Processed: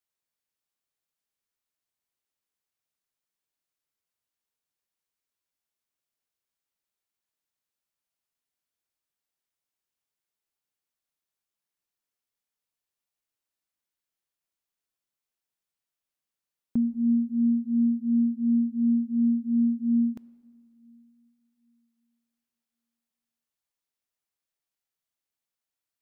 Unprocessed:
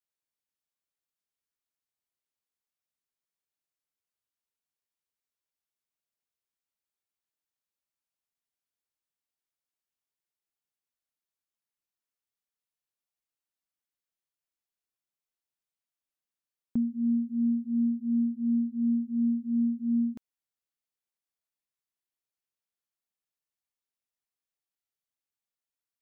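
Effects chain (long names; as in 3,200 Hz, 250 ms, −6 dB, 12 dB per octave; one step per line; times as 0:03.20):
on a send: low-shelf EQ 360 Hz −5.5 dB + convolution reverb RT60 2.1 s, pre-delay 5 ms, DRR 16 dB
on the sum: level +2.5 dB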